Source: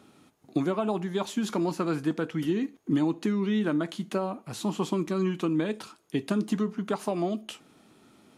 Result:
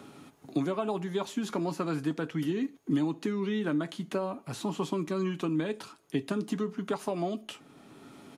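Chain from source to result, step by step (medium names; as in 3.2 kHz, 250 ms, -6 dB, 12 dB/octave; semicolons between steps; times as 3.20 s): comb 7.2 ms, depth 30%; three bands compressed up and down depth 40%; trim -3 dB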